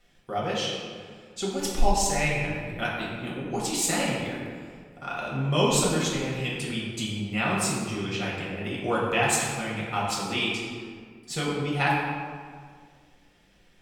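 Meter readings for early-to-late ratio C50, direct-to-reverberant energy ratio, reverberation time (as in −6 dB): 0.0 dB, −6.0 dB, 1.9 s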